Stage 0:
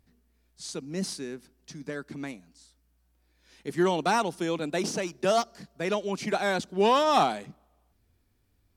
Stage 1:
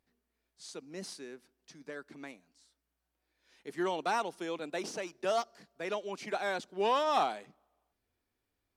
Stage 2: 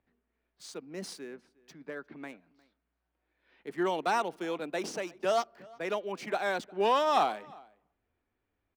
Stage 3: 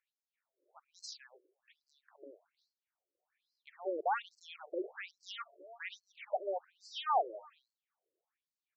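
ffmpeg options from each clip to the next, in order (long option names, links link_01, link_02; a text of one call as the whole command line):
ffmpeg -i in.wav -af "bass=frequency=250:gain=-13,treble=frequency=4000:gain=-4,volume=-6dB" out.wav
ffmpeg -i in.wav -filter_complex "[0:a]acrossover=split=120|3200[link_01][link_02][link_03];[link_03]aeval=exprs='sgn(val(0))*max(abs(val(0))-0.00119,0)':channel_layout=same[link_04];[link_01][link_02][link_04]amix=inputs=3:normalize=0,asplit=2[link_05][link_06];[link_06]adelay=355.7,volume=-24dB,highshelf=frequency=4000:gain=-8[link_07];[link_05][link_07]amix=inputs=2:normalize=0,volume=3dB" out.wav
ffmpeg -i in.wav -af "afftfilt=real='re*between(b*sr/1024,420*pow(5900/420,0.5+0.5*sin(2*PI*1.2*pts/sr))/1.41,420*pow(5900/420,0.5+0.5*sin(2*PI*1.2*pts/sr))*1.41)':imag='im*between(b*sr/1024,420*pow(5900/420,0.5+0.5*sin(2*PI*1.2*pts/sr))/1.41,420*pow(5900/420,0.5+0.5*sin(2*PI*1.2*pts/sr))*1.41)':win_size=1024:overlap=0.75,volume=-1.5dB" out.wav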